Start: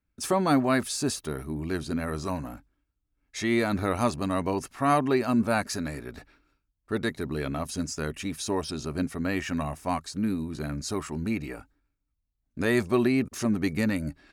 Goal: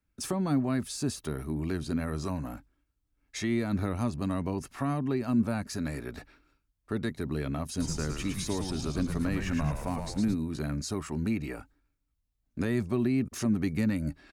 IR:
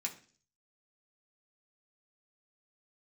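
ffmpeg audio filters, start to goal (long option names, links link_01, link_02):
-filter_complex "[0:a]acrossover=split=260[link_01][link_02];[link_02]acompressor=threshold=-36dB:ratio=5[link_03];[link_01][link_03]amix=inputs=2:normalize=0,asplit=3[link_04][link_05][link_06];[link_04]afade=type=out:start_time=7.79:duration=0.02[link_07];[link_05]asplit=8[link_08][link_09][link_10][link_11][link_12][link_13][link_14][link_15];[link_09]adelay=110,afreqshift=-100,volume=-4.5dB[link_16];[link_10]adelay=220,afreqshift=-200,volume=-10.2dB[link_17];[link_11]adelay=330,afreqshift=-300,volume=-15.9dB[link_18];[link_12]adelay=440,afreqshift=-400,volume=-21.5dB[link_19];[link_13]adelay=550,afreqshift=-500,volume=-27.2dB[link_20];[link_14]adelay=660,afreqshift=-600,volume=-32.9dB[link_21];[link_15]adelay=770,afreqshift=-700,volume=-38.6dB[link_22];[link_08][link_16][link_17][link_18][link_19][link_20][link_21][link_22]amix=inputs=8:normalize=0,afade=type=in:start_time=7.79:duration=0.02,afade=type=out:start_time=10.33:duration=0.02[link_23];[link_06]afade=type=in:start_time=10.33:duration=0.02[link_24];[link_07][link_23][link_24]amix=inputs=3:normalize=0,volume=1dB"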